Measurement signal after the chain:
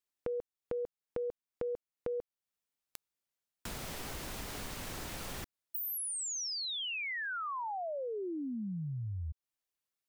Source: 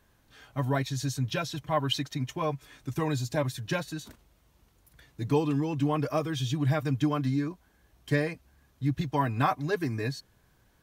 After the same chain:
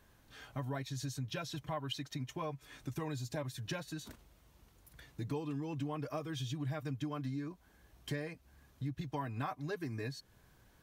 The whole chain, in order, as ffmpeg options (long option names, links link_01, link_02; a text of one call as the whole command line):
ffmpeg -i in.wav -af "acompressor=threshold=-40dB:ratio=3" out.wav